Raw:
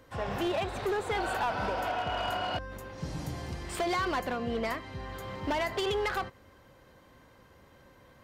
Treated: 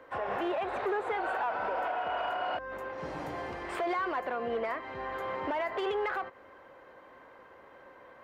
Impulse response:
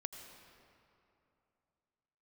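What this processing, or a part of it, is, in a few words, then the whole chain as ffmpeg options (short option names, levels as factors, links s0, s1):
DJ mixer with the lows and highs turned down: -filter_complex "[0:a]acrossover=split=340 2400:gain=0.1 1 0.1[s0][s1][s2];[s0][s1][s2]amix=inputs=3:normalize=0,alimiter=level_in=2.51:limit=0.0631:level=0:latency=1:release=182,volume=0.398,volume=2.37"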